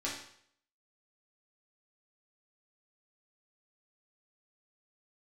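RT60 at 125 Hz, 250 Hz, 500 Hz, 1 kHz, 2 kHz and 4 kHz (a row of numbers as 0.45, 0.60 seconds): 0.65, 0.55, 0.65, 0.65, 0.65, 0.60 seconds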